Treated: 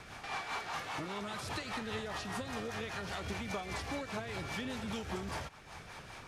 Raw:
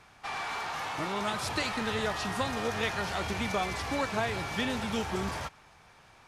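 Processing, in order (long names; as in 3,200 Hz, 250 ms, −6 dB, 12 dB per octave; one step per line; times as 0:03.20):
in parallel at −2.5 dB: brickwall limiter −28 dBFS, peak gain reduction 10 dB
on the sum: downward compressor 4 to 1, threshold −44 dBFS, peak gain reduction 17 dB
rotating-speaker cabinet horn 5 Hz
level +6 dB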